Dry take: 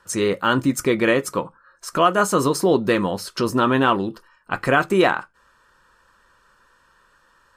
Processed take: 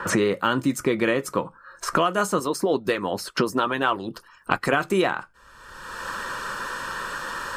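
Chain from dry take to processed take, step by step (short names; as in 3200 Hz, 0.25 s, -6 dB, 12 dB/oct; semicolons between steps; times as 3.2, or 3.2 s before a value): 2.39–4.73 harmonic-percussive split harmonic -15 dB; three-band squash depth 100%; gain -3 dB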